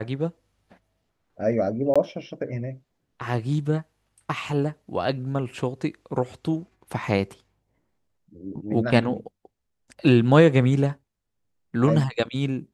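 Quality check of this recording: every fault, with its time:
0:01.94–0:01.96: drop-out 16 ms

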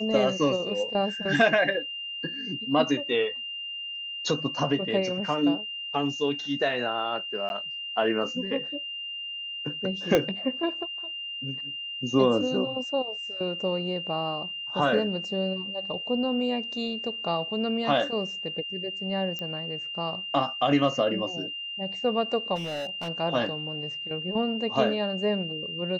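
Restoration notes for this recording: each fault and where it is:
whistle 2,800 Hz −33 dBFS
0:07.49–0:07.50: drop-out
0:10.15: click −8 dBFS
0:19.39: click −20 dBFS
0:22.55–0:23.09: clipping −29 dBFS

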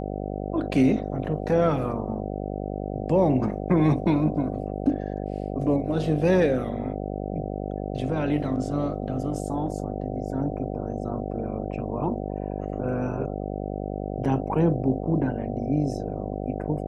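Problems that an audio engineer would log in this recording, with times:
mains buzz 50 Hz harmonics 15 −31 dBFS

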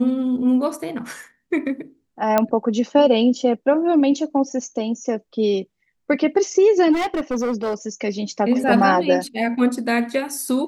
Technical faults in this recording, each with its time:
0:02.38: click −4 dBFS
0:06.92–0:07.74: clipping −18.5 dBFS

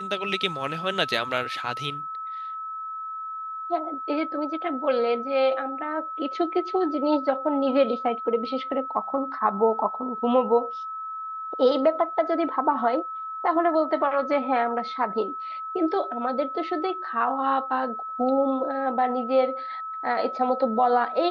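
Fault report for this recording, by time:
whistle 1,300 Hz −31 dBFS

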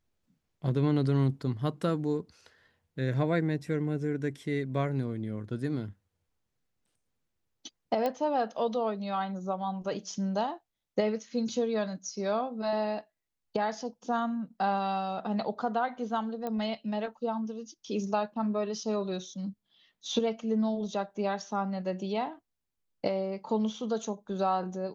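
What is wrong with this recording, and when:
0:08.06: click −18 dBFS
0:16.47: click −22 dBFS

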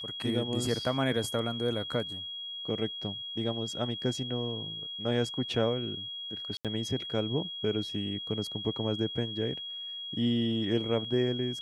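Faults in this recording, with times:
whistle 3,300 Hz −37 dBFS
0:06.57–0:06.65: drop-out 77 ms

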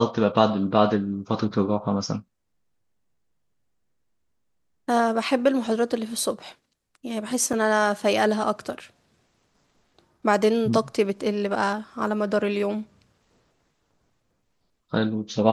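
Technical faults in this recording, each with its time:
0:07.53: drop-out 4.1 ms

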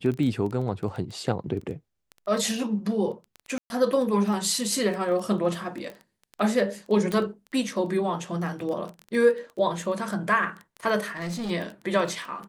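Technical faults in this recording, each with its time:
surface crackle 12 per second −30 dBFS
0:03.58–0:03.70: drop-out 121 ms
0:07.12: click −15 dBFS
0:11.06–0:11.51: clipping −28 dBFS

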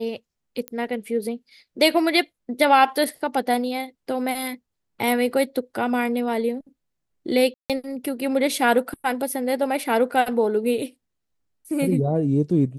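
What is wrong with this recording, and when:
0:00.68: click −15 dBFS
0:07.54–0:07.70: drop-out 157 ms

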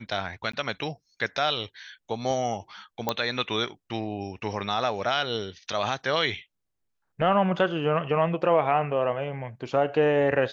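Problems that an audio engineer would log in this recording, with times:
0:00.52–0:00.53: drop-out 14 ms
0:03.09: click −10 dBFS

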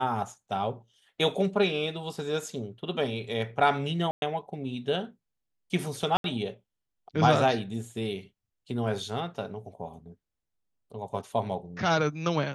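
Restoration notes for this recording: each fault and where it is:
0:04.11–0:04.22: drop-out 111 ms
0:06.17–0:06.24: drop-out 72 ms

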